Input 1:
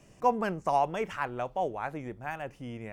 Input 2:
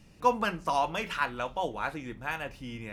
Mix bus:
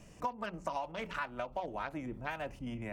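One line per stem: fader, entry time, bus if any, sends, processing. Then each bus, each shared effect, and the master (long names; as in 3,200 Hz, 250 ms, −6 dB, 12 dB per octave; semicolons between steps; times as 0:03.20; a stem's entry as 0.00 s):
+1.5 dB, 0.00 s, no send, Bessel high-pass filter 510 Hz, order 4; gate pattern "xxxx.x.xx.xx.x." 197 BPM −12 dB
0.0 dB, 0.00 s, no send, adaptive Wiener filter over 25 samples; Butterworth low-pass 5,900 Hz 72 dB per octave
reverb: not used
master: downward compressor 8 to 1, threshold −34 dBFS, peak gain reduction 18.5 dB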